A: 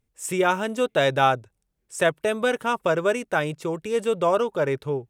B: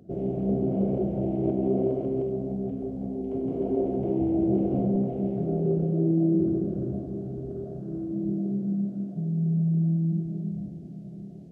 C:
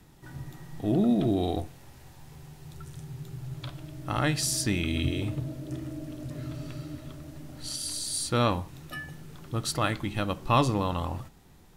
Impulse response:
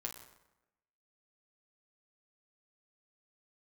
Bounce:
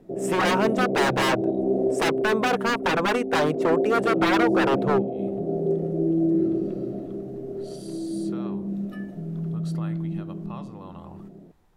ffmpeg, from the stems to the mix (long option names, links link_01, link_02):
-filter_complex "[0:a]highshelf=frequency=2800:gain=-8,aeval=exprs='0.0596*(abs(mod(val(0)/0.0596+3,4)-2)-1)':channel_layout=same,volume=0.5dB,asplit=2[link_01][link_02];[1:a]bandpass=frequency=350:width_type=q:width=0.66:csg=0,volume=-3.5dB[link_03];[2:a]lowshelf=frequency=73:gain=10.5,acompressor=threshold=-30dB:ratio=6,volume=-14.5dB[link_04];[link_02]apad=whole_len=518951[link_05];[link_04][link_05]sidechaincompress=threshold=-52dB:ratio=5:attack=16:release=157[link_06];[link_01][link_03][link_06]amix=inputs=3:normalize=0,equalizer=frequency=820:width=0.38:gain=9.5"